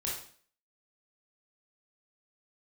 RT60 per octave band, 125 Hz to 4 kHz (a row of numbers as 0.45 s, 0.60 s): 0.50 s, 0.55 s, 0.50 s, 0.45 s, 0.50 s, 0.45 s